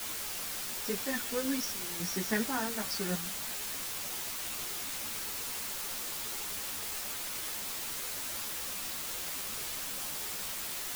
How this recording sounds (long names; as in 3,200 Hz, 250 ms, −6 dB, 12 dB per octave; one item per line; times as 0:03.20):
sample-and-hold tremolo, depth 85%
a quantiser's noise floor 6 bits, dither triangular
a shimmering, thickened sound